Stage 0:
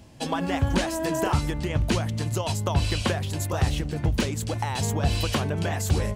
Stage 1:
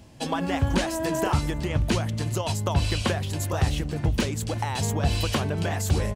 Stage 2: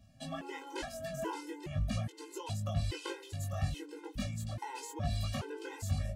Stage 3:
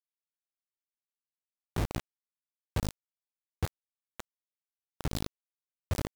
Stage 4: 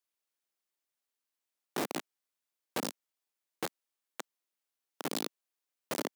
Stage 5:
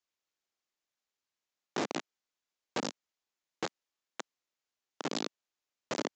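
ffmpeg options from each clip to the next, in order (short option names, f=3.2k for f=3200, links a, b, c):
-af "aecho=1:1:377:0.075"
-af "flanger=delay=18:depth=3.4:speed=0.42,afftfilt=real='re*gt(sin(2*PI*1.2*pts/sr)*(1-2*mod(floor(b*sr/1024/270),2)),0)':imag='im*gt(sin(2*PI*1.2*pts/sr)*(1-2*mod(floor(b*sr/1024/270),2)),0)':win_size=1024:overlap=0.75,volume=-7.5dB"
-filter_complex "[0:a]acrossover=split=240[a][b];[b]acompressor=threshold=-52dB:ratio=10[c];[a][c]amix=inputs=2:normalize=0,acrusher=bits=4:mix=0:aa=0.000001"
-filter_complex "[0:a]asplit=2[a][b];[b]aeval=exprs='(mod(75*val(0)+1,2)-1)/75':c=same,volume=-5.5dB[c];[a][c]amix=inputs=2:normalize=0,highpass=f=240:w=0.5412,highpass=f=240:w=1.3066,volume=3dB"
-af "aresample=16000,aresample=44100,volume=1dB"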